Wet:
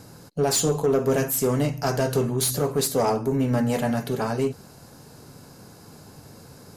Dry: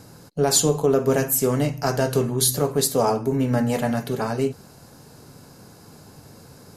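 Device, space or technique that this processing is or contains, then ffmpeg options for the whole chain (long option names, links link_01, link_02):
saturation between pre-emphasis and de-emphasis: -af "highshelf=frequency=7000:gain=9,asoftclip=type=tanh:threshold=-13.5dB,highshelf=frequency=7000:gain=-9"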